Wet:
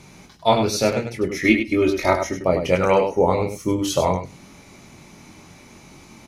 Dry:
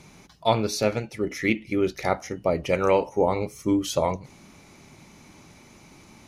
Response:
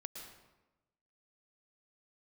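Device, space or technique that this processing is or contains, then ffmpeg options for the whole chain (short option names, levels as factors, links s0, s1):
slapback doubling: -filter_complex "[0:a]asettb=1/sr,asplit=3[s0][s1][s2];[s0]atrim=end=1.444[s3];[s1]atrim=start=1.44:end=2.34,asetpts=PTS-STARTPTS,afade=t=in:d=0.004:c=qsin,afade=t=out:st=0.896:d=0.004:c=qsin,aecho=1:1:3.2:0.91,atrim=end_sample=39690[s4];[s2]atrim=start=2.336[s5];[s3][s4]acrossfade=d=0.004:c1=hsin:c2=qsin[s6];[s6][s5]acrossfade=d=0.004:c1=qsin:c2=hsin,asplit=3[s7][s8][s9];[s8]adelay=22,volume=0.562[s10];[s9]adelay=99,volume=0.447[s11];[s7][s10][s11]amix=inputs=3:normalize=0,volume=1.41"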